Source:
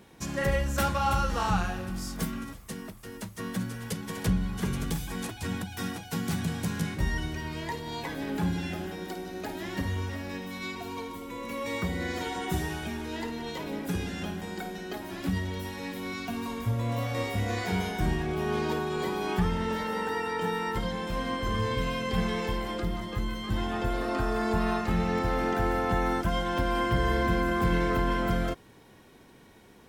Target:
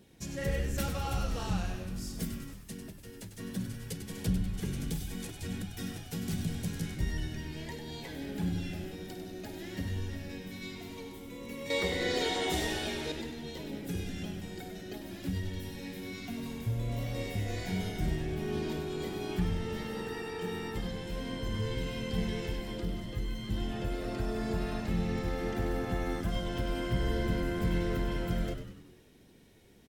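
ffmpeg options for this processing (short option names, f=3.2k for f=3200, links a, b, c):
-filter_complex "[0:a]equalizer=f=1.1k:t=o:w=1.2:g=-12,flanger=delay=0.2:depth=2.2:regen=-71:speed=1.4:shape=sinusoidal,asettb=1/sr,asplit=3[a][b][c];[a]atrim=end=11.704[d];[b]atrim=start=11.7:end=13.12,asetpts=PTS-STARTPTS,afade=t=in:d=0.004:c=qsin,afade=t=out:st=1.416:d=0.004:c=qsin,equalizer=f=125:t=o:w=1:g=-9,equalizer=f=500:t=o:w=1:g=11,equalizer=f=1k:t=o:w=1:g=8,equalizer=f=2k:t=o:w=1:g=5,equalizer=f=4k:t=o:w=1:g=11,equalizer=f=8k:t=o:w=1:g=5[e];[c]atrim=start=13.116[f];[d][e]acrossfade=d=0.004:c1=hsin:c2=qsin[g];[g][f]acrossfade=d=0.004:c1=qsin:c2=hsin,asplit=2[h][i];[i]asplit=6[j][k][l][m][n][o];[j]adelay=98,afreqshift=-82,volume=-8.5dB[p];[k]adelay=196,afreqshift=-164,volume=-14dB[q];[l]adelay=294,afreqshift=-246,volume=-19.5dB[r];[m]adelay=392,afreqshift=-328,volume=-25dB[s];[n]adelay=490,afreqshift=-410,volume=-30.6dB[t];[o]adelay=588,afreqshift=-492,volume=-36.1dB[u];[p][q][r][s][t][u]amix=inputs=6:normalize=0[v];[h][v]amix=inputs=2:normalize=0"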